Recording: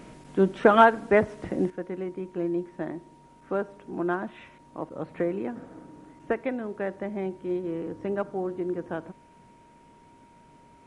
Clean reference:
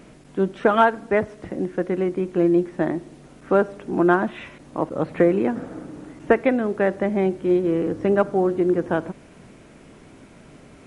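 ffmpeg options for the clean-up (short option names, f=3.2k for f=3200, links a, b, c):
-af "bandreject=f=940:w=30,asetnsamples=n=441:p=0,asendcmd='1.7 volume volume 10.5dB',volume=0dB"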